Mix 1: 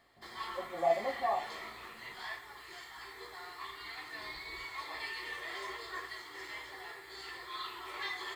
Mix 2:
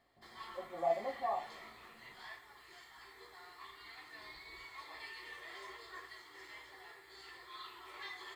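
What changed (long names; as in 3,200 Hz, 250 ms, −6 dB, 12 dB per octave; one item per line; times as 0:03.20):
speech −4.0 dB
background −8.0 dB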